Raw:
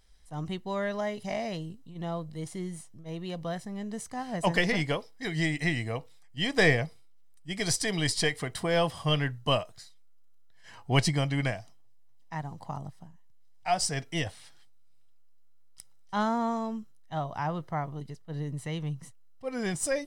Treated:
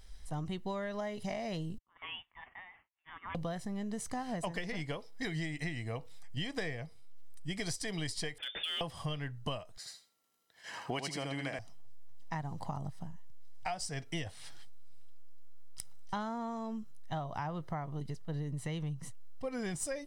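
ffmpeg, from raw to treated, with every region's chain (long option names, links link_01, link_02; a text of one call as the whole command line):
ffmpeg -i in.wav -filter_complex "[0:a]asettb=1/sr,asplit=3[link_01][link_02][link_03];[link_01]atrim=end=1.784[link_04];[link_02]atrim=start=1.78:end=3.35,asetpts=PTS-STARTPTS,afade=type=in:duration=0.004:curve=qsin,afade=type=out:start_time=1.566:duration=0.004:curve=qsin,agate=range=-33dB:threshold=-39dB:ratio=3:release=100:detection=peak,highpass=frequency=1300:width=0.5412,highpass=frequency=1300:width=1.3066,lowpass=frequency=3400:width_type=q:width=0.5098,lowpass=frequency=3400:width_type=q:width=0.6013,lowpass=frequency=3400:width_type=q:width=0.9,lowpass=frequency=3400:width_type=q:width=2.563,afreqshift=-4000[link_05];[link_03]atrim=start=3.346[link_06];[link_04][link_05]acrossfade=duration=0.004:curve1=hsin:curve2=qsin[link_07];[link_07][link_06]acrossfade=duration=0.004:curve1=qsin:curve2=hsin,asettb=1/sr,asplit=3[link_08][link_09][link_10];[link_08]atrim=end=8.384[link_11];[link_09]atrim=start=8.38:end=8.81,asetpts=PTS-STARTPTS,afade=type=in:duration=0.004:curve=qsin,afade=type=out:start_time=0.426:duration=0.004:curve=qsin,lowpass=frequency=3100:width_type=q:width=0.5098,lowpass=frequency=3100:width_type=q:width=0.6013,lowpass=frequency=3100:width_type=q:width=0.9,lowpass=frequency=3100:width_type=q:width=2.563,afreqshift=-3600,acompressor=threshold=-29dB:ratio=20:attack=3.2:release=140:knee=1:detection=peak,asoftclip=type=hard:threshold=-28.5dB[link_12];[link_10]atrim=start=8.806[link_13];[link_11][link_12]acrossfade=duration=0.004:curve1=hsin:curve2=qsin[link_14];[link_14][link_13]acrossfade=duration=0.004:curve1=qsin:curve2=hsin,asettb=1/sr,asplit=3[link_15][link_16][link_17];[link_15]atrim=end=9.774[link_18];[link_16]atrim=start=9.77:end=11.59,asetpts=PTS-STARTPTS,afade=type=in:duration=0.004:curve=qsin,afade=type=out:start_time=1.816:duration=0.004:curve=qsin,highpass=270,aecho=1:1:80|160|240:0.631|0.114|0.0204,atrim=end_sample=80262[link_19];[link_17]atrim=start=11.586[link_20];[link_18][link_19]acrossfade=duration=0.004:curve1=hsin:curve2=qsin[link_21];[link_21][link_20]acrossfade=duration=0.004:curve1=qsin:curve2=hsin,lowshelf=frequency=73:gain=7,acompressor=threshold=-40dB:ratio=12,volume=5.5dB" out.wav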